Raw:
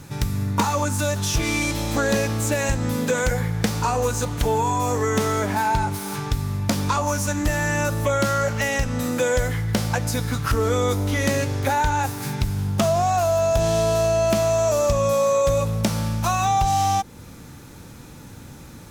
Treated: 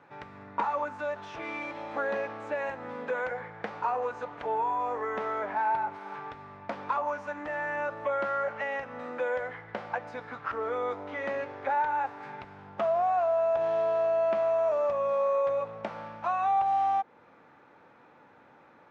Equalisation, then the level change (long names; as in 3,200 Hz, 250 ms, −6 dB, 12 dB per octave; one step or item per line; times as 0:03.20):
flat-topped band-pass 1,200 Hz, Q 0.68
spectral tilt −3 dB per octave
−5.5 dB